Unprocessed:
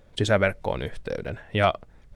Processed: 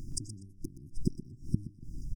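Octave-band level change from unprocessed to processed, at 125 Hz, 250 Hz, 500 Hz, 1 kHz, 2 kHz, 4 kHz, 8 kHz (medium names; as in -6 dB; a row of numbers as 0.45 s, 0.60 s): -8.0 dB, -6.5 dB, -28.0 dB, under -40 dB, under -40 dB, -17.0 dB, no reading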